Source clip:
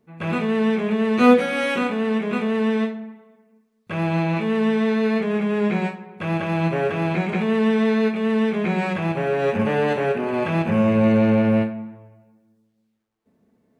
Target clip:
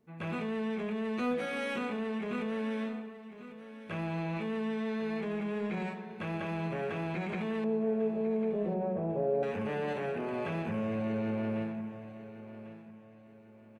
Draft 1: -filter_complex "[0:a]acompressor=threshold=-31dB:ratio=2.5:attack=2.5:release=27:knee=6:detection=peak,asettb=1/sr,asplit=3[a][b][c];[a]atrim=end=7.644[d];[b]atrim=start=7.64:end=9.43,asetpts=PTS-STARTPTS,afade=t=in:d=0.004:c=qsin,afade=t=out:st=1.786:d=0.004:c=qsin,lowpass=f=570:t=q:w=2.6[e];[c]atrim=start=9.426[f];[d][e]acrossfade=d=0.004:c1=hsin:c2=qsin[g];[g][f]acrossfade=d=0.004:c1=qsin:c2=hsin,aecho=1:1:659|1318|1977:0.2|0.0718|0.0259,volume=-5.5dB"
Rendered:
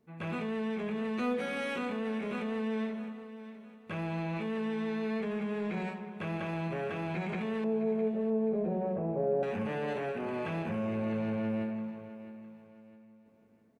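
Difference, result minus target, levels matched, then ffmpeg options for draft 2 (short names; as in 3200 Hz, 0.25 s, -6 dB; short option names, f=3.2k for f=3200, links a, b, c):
echo 0.438 s early
-filter_complex "[0:a]acompressor=threshold=-31dB:ratio=2.5:attack=2.5:release=27:knee=6:detection=peak,asettb=1/sr,asplit=3[a][b][c];[a]atrim=end=7.644[d];[b]atrim=start=7.64:end=9.43,asetpts=PTS-STARTPTS,afade=t=in:d=0.004:c=qsin,afade=t=out:st=1.786:d=0.004:c=qsin,lowpass=f=570:t=q:w=2.6[e];[c]atrim=start=9.426[f];[d][e]acrossfade=d=0.004:c1=hsin:c2=qsin[g];[g][f]acrossfade=d=0.004:c1=qsin:c2=hsin,aecho=1:1:1097|2194|3291:0.2|0.0718|0.0259,volume=-5.5dB"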